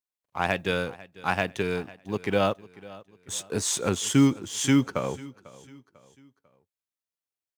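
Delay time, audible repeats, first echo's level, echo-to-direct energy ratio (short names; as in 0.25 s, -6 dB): 0.496 s, 2, -20.0 dB, -19.0 dB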